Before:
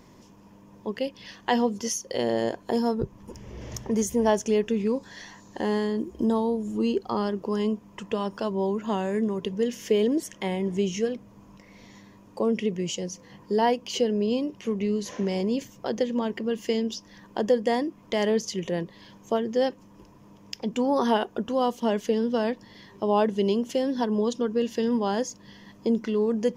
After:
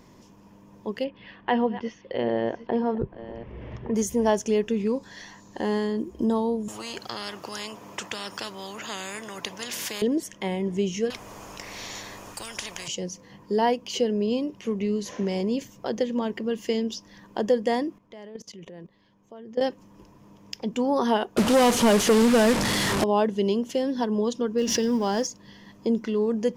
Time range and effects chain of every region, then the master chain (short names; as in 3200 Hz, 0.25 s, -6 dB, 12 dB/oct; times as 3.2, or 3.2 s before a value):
1.04–3.95 reverse delay 0.599 s, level -14 dB + LPF 2900 Hz 24 dB/oct
6.68–10.02 HPF 180 Hz + spectral compressor 4:1
11.1–12.88 bell 8800 Hz +5 dB 0.97 oct + spectral compressor 10:1
17.98–19.61 high shelf 3600 Hz -9 dB + level quantiser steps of 21 dB
21.37–23.04 delta modulation 64 kbps, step -30 dBFS + sample leveller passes 3
24.58–25.27 G.711 law mismatch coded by mu + bell 5600 Hz +11.5 dB 0.26 oct + backwards sustainer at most 40 dB/s
whole clip: dry